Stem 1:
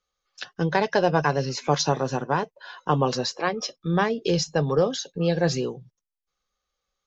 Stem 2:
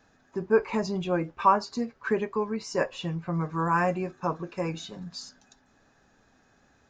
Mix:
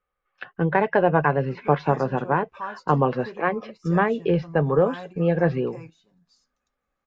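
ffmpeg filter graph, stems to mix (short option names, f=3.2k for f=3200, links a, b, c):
-filter_complex "[0:a]lowpass=f=2.2k:w=0.5412,lowpass=f=2.2k:w=1.3066,volume=2dB,asplit=2[a][b];[1:a]adelay=1150,volume=-12.5dB[c];[b]apad=whole_len=354586[d];[c][d]sidechaingate=range=-11dB:threshold=-45dB:ratio=16:detection=peak[e];[a][e]amix=inputs=2:normalize=0,equalizer=f=2.6k:t=o:w=0.77:g=2"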